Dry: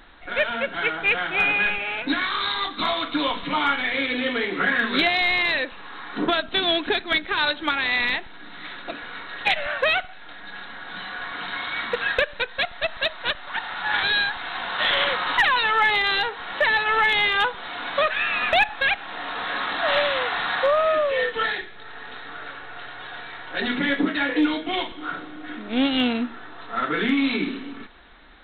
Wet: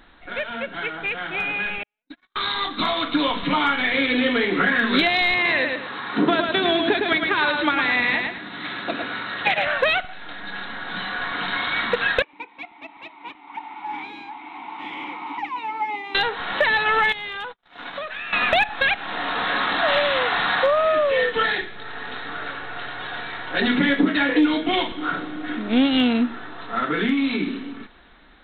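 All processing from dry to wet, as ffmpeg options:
-filter_complex "[0:a]asettb=1/sr,asplit=3[a][b][c];[a]atrim=end=1.834[d];[b]atrim=start=1.83:end=2.36,asetpts=PTS-STARTPTS,afade=t=in:d=0.004:c=qsin,afade=t=out:st=0.526:d=0.004:c=qsin,agate=range=-58dB:threshold=-20dB:ratio=16:release=100:detection=peak,acompressor=threshold=-39dB:ratio=4:attack=3.2:release=140:knee=1:detection=peak[e];[c]atrim=start=2.356[f];[d][e]acrossfade=d=0.004:c1=hsin:c2=qsin[g];[g][f]acrossfade=d=0.004:c1=qsin:c2=hsin,asettb=1/sr,asplit=3[h][i][j];[h]atrim=end=5.344[k];[i]atrim=start=5.34:end=9.68,asetpts=PTS-STARTPTS,afade=t=in:d=0.004:c=qsin,afade=t=out:st=4.336:d=0.004:c=qsin,acrossover=split=3000[l][m];[m]acompressor=threshold=-38dB:ratio=4:attack=1:release=60[n];[l][n]amix=inputs=2:normalize=0,highpass=78,aecho=1:1:109|218|327|436:0.531|0.143|0.0387|0.0104,atrim=end_sample=191394[o];[j]atrim=start=9.676[p];[k][o]acrossfade=d=0.004:c1=hsin:c2=qsin[q];[q][p]acrossfade=d=0.004:c1=qsin:c2=hsin,asettb=1/sr,asplit=3[r][s][t];[r]atrim=end=12.224[u];[s]atrim=start=12.22:end=16.15,asetpts=PTS-STARTPTS,afade=t=in:d=0.004:c=qsin,afade=t=out:st=3.926:d=0.004:c=qsin,asplit=2[v][w];[w]highpass=f=720:p=1,volume=13dB,asoftclip=type=tanh:threshold=-10dB[x];[v][x]amix=inputs=2:normalize=0,lowpass=f=1.4k:p=1,volume=-6dB,asplit=3[y][z][aa];[y]bandpass=f=300:t=q:w=8,volume=0dB[ab];[z]bandpass=f=870:t=q:w=8,volume=-6dB[ac];[aa]bandpass=f=2.24k:t=q:w=8,volume=-9dB[ad];[ab][ac][ad]amix=inputs=3:normalize=0[ae];[t]atrim=start=16.146[af];[u][ae]acrossfade=d=0.004:c1=hsin:c2=qsin[ag];[ag][af]acrossfade=d=0.004:c1=qsin:c2=hsin,asettb=1/sr,asplit=3[ah][ai][aj];[ah]atrim=end=17.124[ak];[ai]atrim=start=17.12:end=18.33,asetpts=PTS-STARTPTS,afade=t=in:d=0.004:c=qsin,afade=t=out:st=1.206:d=0.004:c=qsin,agate=range=-58dB:threshold=-31dB:ratio=16:release=100:detection=peak,acompressor=threshold=-36dB:ratio=4:attack=3.2:release=140:knee=1:detection=peak[al];[aj]atrim=start=18.326[am];[ak][al]acrossfade=d=0.004:c1=hsin:c2=qsin[an];[an][am]acrossfade=d=0.004:c1=qsin:c2=hsin,acompressor=threshold=-23dB:ratio=2.5,equalizer=f=190:t=o:w=1.7:g=4,dynaudnorm=f=580:g=9:m=8dB,volume=-2.5dB"

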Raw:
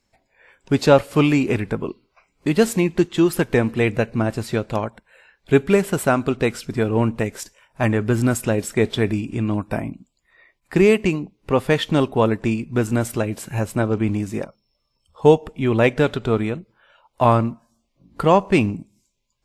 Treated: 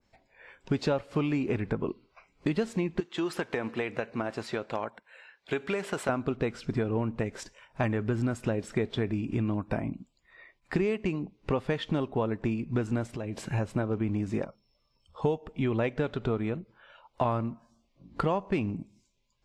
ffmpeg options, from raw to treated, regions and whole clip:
-filter_complex "[0:a]asettb=1/sr,asplit=3[a][b][c];[a]atrim=end=3.004[d];[b]atrim=start=3:end=6.09,asetpts=PTS-STARTPTS,afade=t=in:d=0.004:c=qsin,afade=t=out:st=3.086:d=0.004:c=qsin,highpass=f=710:p=1,acompressor=threshold=-24dB:ratio=2.5:attack=3.2:release=140:knee=1:detection=peak[e];[c]atrim=start=6.086[f];[d][e]acrossfade=d=0.004:c1=hsin:c2=qsin[g];[g][f]acrossfade=d=0.004:c1=qsin:c2=hsin,asettb=1/sr,asplit=3[h][i][j];[h]atrim=end=13.064[k];[i]atrim=start=13.06:end=13.46,asetpts=PTS-STARTPTS,afade=t=in:d=0.004:c=qsin,afade=t=out:st=0.396:d=0.004:c=qsin,acompressor=threshold=-30dB:ratio=6:attack=3.2:release=140:knee=1:detection=peak,equalizer=f=1.4k:t=o:w=0.25:g=-5[l];[j]atrim=start=13.456[m];[k][l]acrossfade=d=0.004:c1=hsin:c2=qsin[n];[n][m]acrossfade=d=0.004:c1=qsin:c2=hsin,lowpass=5.6k,acompressor=threshold=-26dB:ratio=5,adynamicequalizer=threshold=0.00447:dfrequency=1900:dqfactor=0.7:tfrequency=1900:tqfactor=0.7:attack=5:release=100:ratio=0.375:range=2.5:mode=cutabove:tftype=highshelf"

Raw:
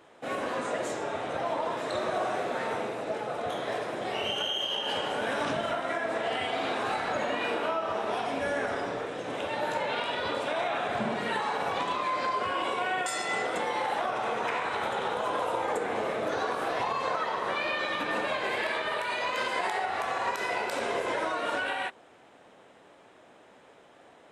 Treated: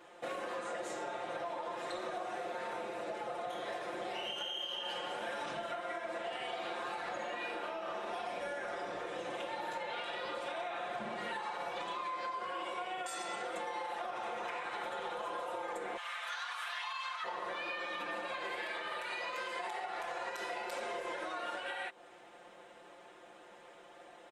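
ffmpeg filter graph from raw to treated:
-filter_complex "[0:a]asettb=1/sr,asplit=3[a][b][c];[a]atrim=end=15.974[d];[b]atrim=start=15.97:end=17.24,asetpts=PTS-STARTPTS,afade=t=in:d=0.004:c=qsin,afade=t=out:st=1.266:d=0.004:c=qsin,highpass=f=1.1k:w=0.5412,highpass=f=1.1k:w=1.3066,equalizer=f=3.2k:w=3.2:g=6[e];[c]atrim=start=17.236[f];[d][e]acrossfade=d=0.004:c1=hsin:c2=qsin[g];[g][f]acrossfade=d=0.004:c1=qsin:c2=hsin,equalizer=f=150:w=1:g=-8,aecho=1:1:5.7:0.97,acompressor=threshold=-35dB:ratio=6,volume=-2.5dB"

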